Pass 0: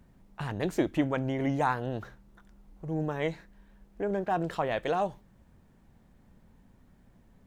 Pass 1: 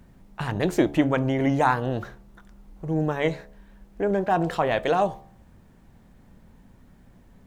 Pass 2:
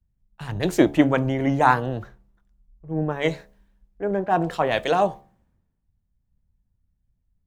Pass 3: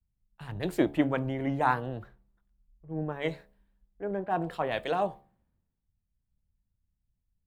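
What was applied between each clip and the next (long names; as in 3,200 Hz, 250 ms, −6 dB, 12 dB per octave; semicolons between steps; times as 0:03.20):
hum removal 71.34 Hz, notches 17; level +7 dB
multiband upward and downward expander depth 100%
parametric band 6,200 Hz −10.5 dB 0.48 octaves; level −8.5 dB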